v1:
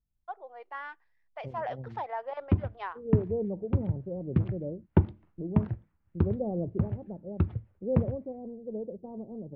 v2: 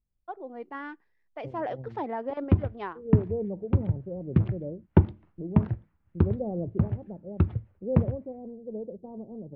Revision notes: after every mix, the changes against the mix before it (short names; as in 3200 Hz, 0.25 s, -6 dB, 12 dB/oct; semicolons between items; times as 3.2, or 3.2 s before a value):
first voice: remove HPF 590 Hz 24 dB/oct; background +3.5 dB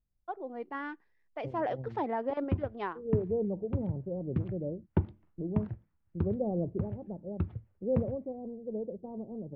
background -9.5 dB